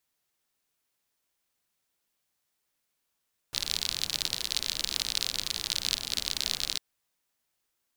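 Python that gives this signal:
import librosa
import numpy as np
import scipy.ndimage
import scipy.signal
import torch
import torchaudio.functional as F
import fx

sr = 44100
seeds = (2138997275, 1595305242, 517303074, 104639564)

y = fx.rain(sr, seeds[0], length_s=3.25, drops_per_s=51.0, hz=4100.0, bed_db=-13)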